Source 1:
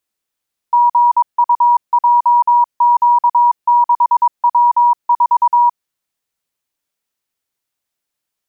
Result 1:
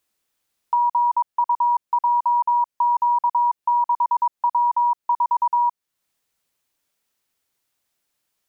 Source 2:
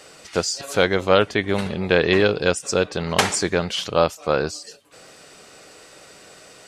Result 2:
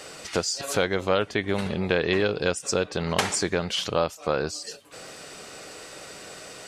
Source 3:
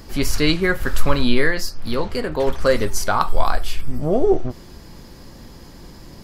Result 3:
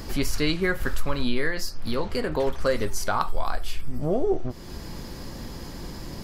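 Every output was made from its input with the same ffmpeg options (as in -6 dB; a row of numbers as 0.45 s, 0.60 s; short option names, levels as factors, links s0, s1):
-af "acompressor=threshold=0.0251:ratio=2,volume=1.58"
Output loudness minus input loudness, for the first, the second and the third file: -8.0 LU, -5.0 LU, -7.5 LU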